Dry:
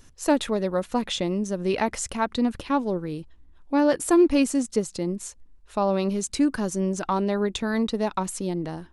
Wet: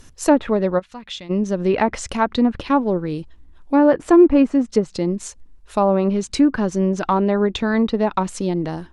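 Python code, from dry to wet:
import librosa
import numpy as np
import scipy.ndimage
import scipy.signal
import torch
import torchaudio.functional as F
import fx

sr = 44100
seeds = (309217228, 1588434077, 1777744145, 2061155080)

y = fx.env_lowpass_down(x, sr, base_hz=1600.0, full_db=-18.5)
y = fx.tone_stack(y, sr, knobs='5-5-5', at=(0.78, 1.29), fade=0.02)
y = y * 10.0 ** (6.5 / 20.0)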